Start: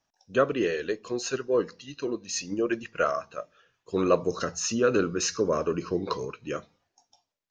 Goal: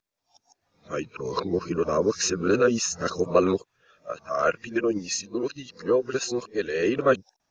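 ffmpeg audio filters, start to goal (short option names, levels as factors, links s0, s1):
-af "areverse,bandreject=f=3000:w=13,volume=1.33"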